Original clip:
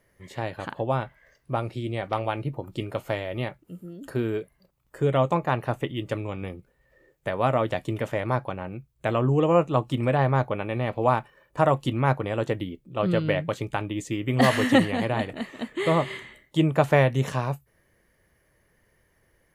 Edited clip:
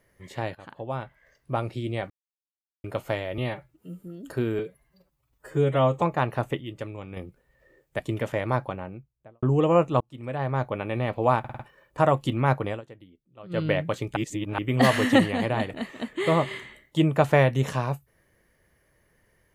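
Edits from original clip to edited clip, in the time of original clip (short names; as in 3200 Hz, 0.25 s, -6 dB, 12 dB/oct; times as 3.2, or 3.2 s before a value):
0.55–1.6 fade in, from -14 dB
2.1–2.84 mute
3.38–3.82 stretch 1.5×
4.37–5.32 stretch 1.5×
5.9–6.47 gain -6 dB
7.3–7.79 cut
8.41–9.22 studio fade out
9.8–10.69 fade in
11.19 stutter 0.05 s, 5 plays
12.29–13.21 dip -19.5 dB, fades 0.12 s
13.76–14.18 reverse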